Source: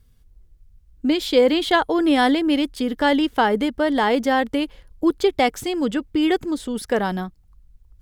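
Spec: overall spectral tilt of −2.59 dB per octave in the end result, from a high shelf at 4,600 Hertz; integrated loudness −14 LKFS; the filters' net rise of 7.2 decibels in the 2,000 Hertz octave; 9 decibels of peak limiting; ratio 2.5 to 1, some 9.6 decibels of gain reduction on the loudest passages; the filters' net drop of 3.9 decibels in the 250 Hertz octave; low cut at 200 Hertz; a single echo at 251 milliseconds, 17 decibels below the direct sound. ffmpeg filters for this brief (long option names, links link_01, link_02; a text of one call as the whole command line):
ffmpeg -i in.wav -af "highpass=200,equalizer=frequency=250:width_type=o:gain=-4,equalizer=frequency=2000:width_type=o:gain=8,highshelf=frequency=4600:gain=5.5,acompressor=threshold=-25dB:ratio=2.5,alimiter=limit=-19dB:level=0:latency=1,aecho=1:1:251:0.141,volume=15dB" out.wav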